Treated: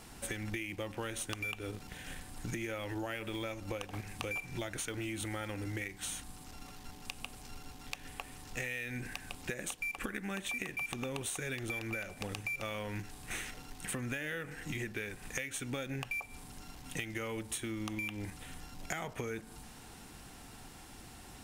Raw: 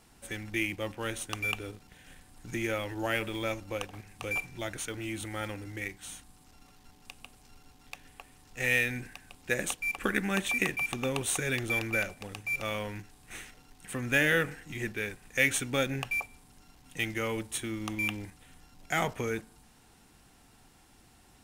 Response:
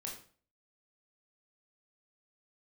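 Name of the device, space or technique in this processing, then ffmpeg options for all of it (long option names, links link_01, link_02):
serial compression, peaks first: -af "acompressor=threshold=-38dB:ratio=6,acompressor=threshold=-45dB:ratio=3,volume=8dB"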